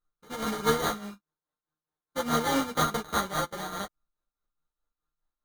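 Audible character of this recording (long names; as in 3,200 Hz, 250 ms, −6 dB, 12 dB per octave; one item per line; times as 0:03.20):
a buzz of ramps at a fixed pitch in blocks of 32 samples
tremolo triangle 4.8 Hz, depth 75%
aliases and images of a low sample rate 2,600 Hz, jitter 0%
a shimmering, thickened sound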